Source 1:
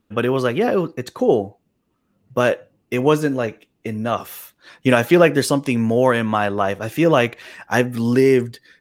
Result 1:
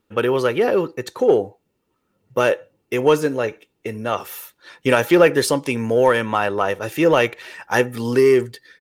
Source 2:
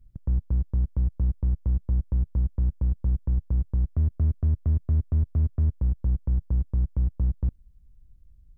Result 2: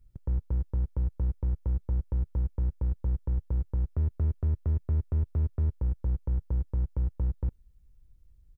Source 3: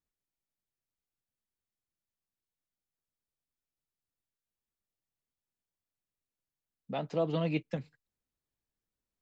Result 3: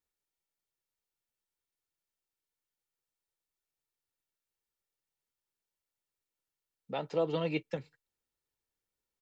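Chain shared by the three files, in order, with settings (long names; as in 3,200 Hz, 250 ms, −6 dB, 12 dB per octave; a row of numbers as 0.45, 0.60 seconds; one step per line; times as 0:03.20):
low-shelf EQ 170 Hz −8 dB
comb filter 2.2 ms, depth 36%
in parallel at −10.5 dB: gain into a clipping stage and back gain 12.5 dB
on the sum: level −1.5 dB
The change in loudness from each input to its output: 0.0, −4.0, −0.5 LU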